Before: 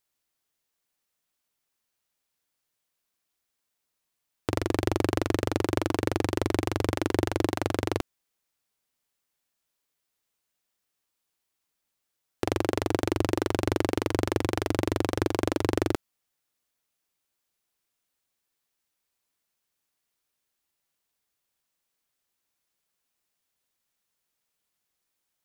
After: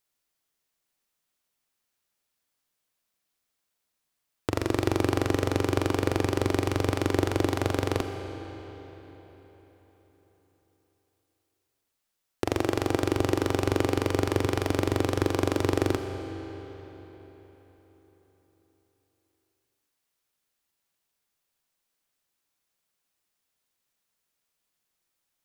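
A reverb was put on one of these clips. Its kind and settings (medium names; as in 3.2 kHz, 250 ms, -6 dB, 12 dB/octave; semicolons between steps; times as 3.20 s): algorithmic reverb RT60 4.3 s, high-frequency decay 0.8×, pre-delay 10 ms, DRR 6 dB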